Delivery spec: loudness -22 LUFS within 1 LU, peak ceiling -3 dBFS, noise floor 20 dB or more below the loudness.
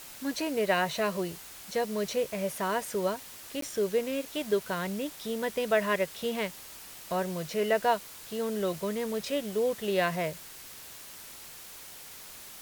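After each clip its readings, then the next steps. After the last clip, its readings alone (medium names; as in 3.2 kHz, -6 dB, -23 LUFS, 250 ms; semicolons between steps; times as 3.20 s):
dropouts 1; longest dropout 13 ms; noise floor -47 dBFS; noise floor target -51 dBFS; loudness -31.0 LUFS; peak level -14.0 dBFS; loudness target -22.0 LUFS
-> interpolate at 3.61 s, 13 ms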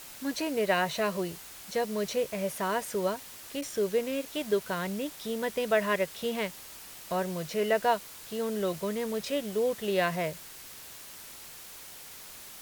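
dropouts 0; noise floor -47 dBFS; noise floor target -51 dBFS
-> noise reduction 6 dB, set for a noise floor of -47 dBFS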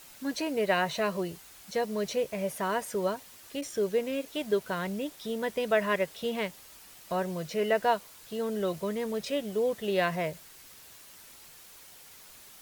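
noise floor -52 dBFS; loudness -31.0 LUFS; peak level -14.0 dBFS; loudness target -22.0 LUFS
-> trim +9 dB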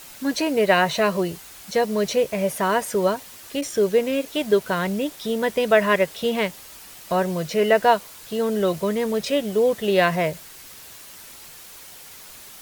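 loudness -22.0 LUFS; peak level -5.0 dBFS; noise floor -43 dBFS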